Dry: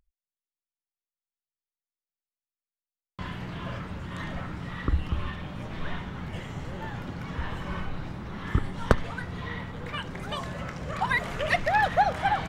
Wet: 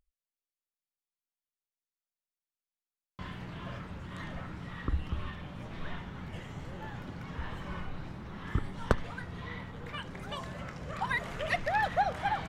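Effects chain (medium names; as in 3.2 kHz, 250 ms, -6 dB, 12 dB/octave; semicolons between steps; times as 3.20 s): wow and flutter 38 cents; trim -6 dB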